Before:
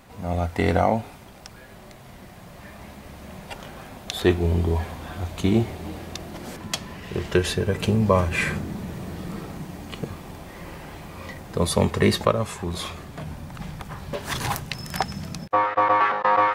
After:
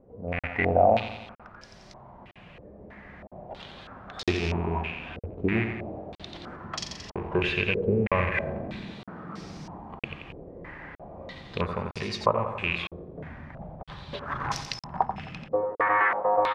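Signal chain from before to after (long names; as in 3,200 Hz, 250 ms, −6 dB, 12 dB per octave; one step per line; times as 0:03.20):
loose part that buzzes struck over −24 dBFS, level −15 dBFS
0:06.62–0:07.43: double-tracking delay 41 ms −7 dB
0:08.81–0:09.40: high-pass filter 140 Hz
0:11.65–0:12.22: downward compressor, threshold −23 dBFS, peak gain reduction 9.5 dB
repeating echo 88 ms, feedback 58%, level −8 dB
regular buffer underruns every 0.96 s, samples 2,048, zero, from 0:00.39
low-pass on a step sequencer 3.1 Hz 470–5,400 Hz
level −7.5 dB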